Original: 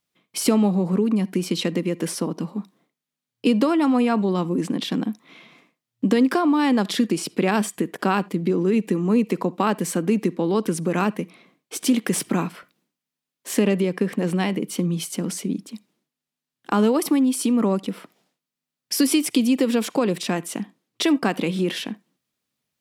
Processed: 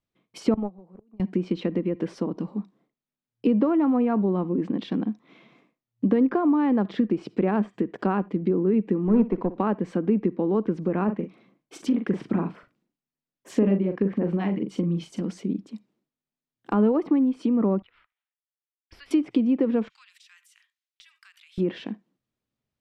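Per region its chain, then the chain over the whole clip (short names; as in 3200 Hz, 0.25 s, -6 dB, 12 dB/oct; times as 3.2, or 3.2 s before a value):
0.54–1.2 gate -16 dBFS, range -28 dB + bell 750 Hz +7.5 dB 1.9 oct + auto swell 0.378 s
9.03–9.58 sample leveller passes 1 + flutter echo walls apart 10 m, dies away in 0.31 s + upward expander, over -27 dBFS
11.04–15.22 LFO notch sine 6.7 Hz 390–4500 Hz + doubler 41 ms -7.5 dB
17.82–19.11 Bessel high-pass 2200 Hz, order 4 + sample leveller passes 1 + air absorption 440 m
19.88–21.58 Bessel high-pass 2600 Hz, order 8 + compressor, threshold -40 dBFS
whole clip: thirty-one-band EQ 160 Hz -8 dB, 250 Hz -3 dB, 10000 Hz -5 dB; treble ducked by the level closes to 1900 Hz, closed at -19.5 dBFS; tilt -3 dB/oct; gain -5.5 dB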